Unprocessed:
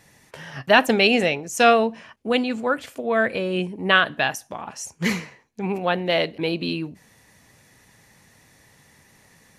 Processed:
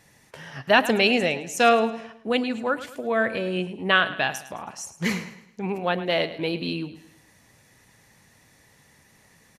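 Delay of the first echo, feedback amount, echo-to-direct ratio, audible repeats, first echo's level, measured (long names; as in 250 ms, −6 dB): 107 ms, 42%, −13.5 dB, 3, −14.5 dB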